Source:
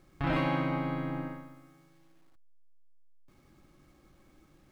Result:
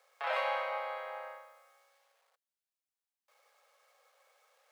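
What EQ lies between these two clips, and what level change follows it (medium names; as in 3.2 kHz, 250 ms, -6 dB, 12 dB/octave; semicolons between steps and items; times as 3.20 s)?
steep high-pass 460 Hz 96 dB/octave; 0.0 dB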